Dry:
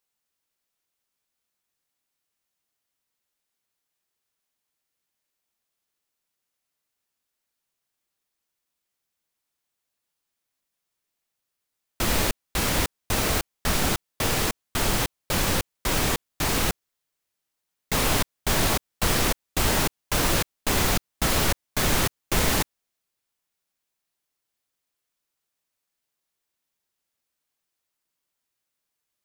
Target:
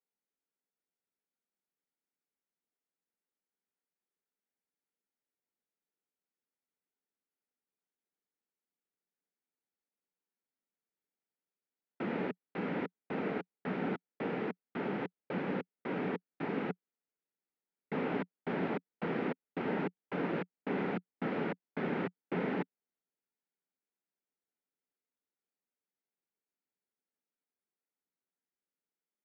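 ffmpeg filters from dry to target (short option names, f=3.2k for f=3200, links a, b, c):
-af "highpass=f=180:w=0.5412,highpass=f=180:w=1.3066,equalizer=f=180:t=q:w=4:g=6,equalizer=f=260:t=q:w=4:g=4,equalizer=f=430:t=q:w=4:g=5,equalizer=f=640:t=q:w=4:g=-4,equalizer=f=1.1k:t=q:w=4:g=-9,equalizer=f=1.7k:t=q:w=4:g=-4,lowpass=f=2k:w=0.5412,lowpass=f=2k:w=1.3066,volume=-8dB"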